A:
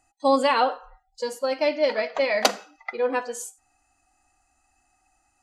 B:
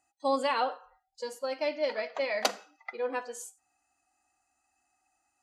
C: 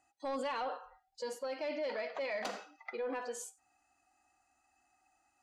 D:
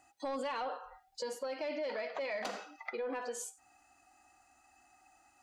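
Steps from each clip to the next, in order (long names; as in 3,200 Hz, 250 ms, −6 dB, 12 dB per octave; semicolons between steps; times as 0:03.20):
high-pass filter 230 Hz 6 dB per octave; level −7.5 dB
soft clipping −22.5 dBFS, distortion −15 dB; high-shelf EQ 6,800 Hz −9.5 dB; brickwall limiter −34 dBFS, peak gain reduction 11.5 dB; level +3 dB
downward compressor 2 to 1, threshold −51 dBFS, peak gain reduction 9.5 dB; level +8.5 dB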